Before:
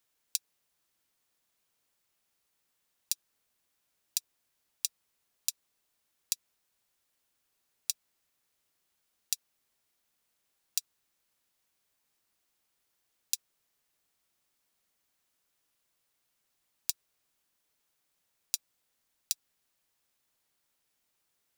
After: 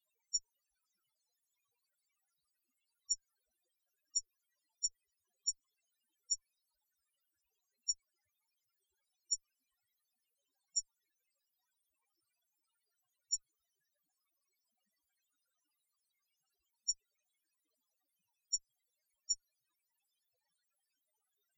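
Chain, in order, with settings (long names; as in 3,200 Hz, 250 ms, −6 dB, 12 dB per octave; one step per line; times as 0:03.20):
harmonic generator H 8 −27 dB, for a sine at −4.5 dBFS
spectral peaks only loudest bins 4
level +12 dB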